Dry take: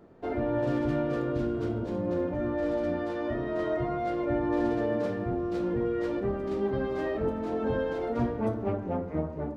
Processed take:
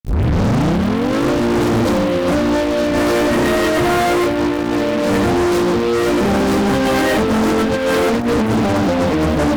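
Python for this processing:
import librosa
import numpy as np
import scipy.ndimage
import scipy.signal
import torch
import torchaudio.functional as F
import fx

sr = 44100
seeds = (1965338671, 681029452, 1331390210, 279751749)

y = fx.tape_start_head(x, sr, length_s=1.27)
y = scipy.signal.sosfilt(scipy.signal.butter(2, 100.0, 'highpass', fs=sr, output='sos'), y)
y = fx.high_shelf(y, sr, hz=4500.0, db=12.0)
y = y + 0.5 * np.pad(y, (int(3.8 * sr / 1000.0), 0))[:len(y)]
y = fx.over_compress(y, sr, threshold_db=-31.0, ratio=-0.5)
y = fx.dmg_crackle(y, sr, seeds[0], per_s=190.0, level_db=-51.0)
y = fx.low_shelf(y, sr, hz=180.0, db=7.5)
y = fx.fuzz(y, sr, gain_db=39.0, gate_db=-44.0)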